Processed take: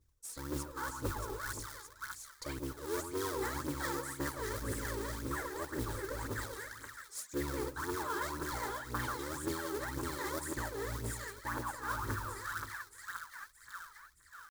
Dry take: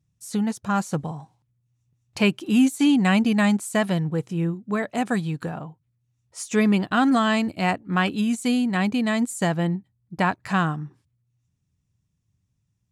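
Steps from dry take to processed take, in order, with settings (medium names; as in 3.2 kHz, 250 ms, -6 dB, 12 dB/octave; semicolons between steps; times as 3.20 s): cycle switcher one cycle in 3, inverted; tempo 0.89×; bass shelf 410 Hz -4.5 dB; static phaser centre 710 Hz, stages 6; on a send: two-band feedback delay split 1.4 kHz, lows 139 ms, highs 624 ms, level -6.5 dB; on the sum: phaser 1.9 Hz, delay 2.6 ms, feedback 70%; modulation noise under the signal 14 dB; reverse; compression 4:1, threshold -36 dBFS, peak gain reduction 19 dB; reverse; band-stop 2.9 kHz, Q 20; random flutter of the level, depth 50%; trim +1 dB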